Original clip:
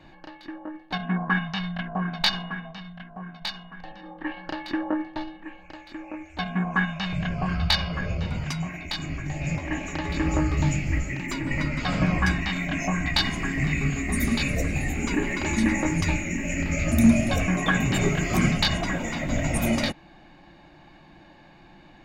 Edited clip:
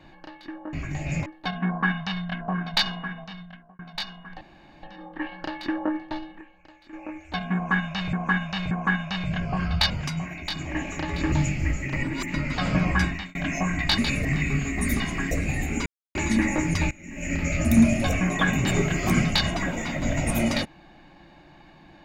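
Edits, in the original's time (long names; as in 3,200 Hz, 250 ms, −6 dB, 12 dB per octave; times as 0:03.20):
0:02.88–0:03.26: fade out
0:03.88: splice in room tone 0.42 s
0:05.46–0:05.98: clip gain −9 dB
0:06.60–0:07.18: repeat, 3 plays
0:07.79–0:08.33: remove
0:09.08–0:09.61: move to 0:00.73
0:10.28–0:10.59: remove
0:11.20–0:11.61: reverse
0:12.32–0:12.62: fade out
0:13.25–0:13.56: swap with 0:14.31–0:14.58
0:15.13–0:15.42: silence
0:16.18–0:16.59: fade in quadratic, from −19 dB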